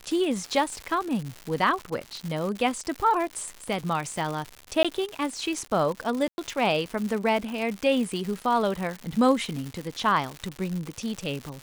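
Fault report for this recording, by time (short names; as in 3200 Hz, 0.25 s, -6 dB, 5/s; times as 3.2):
crackle 200/s -30 dBFS
4.83–4.85 gap 16 ms
6.28–6.38 gap 0.101 s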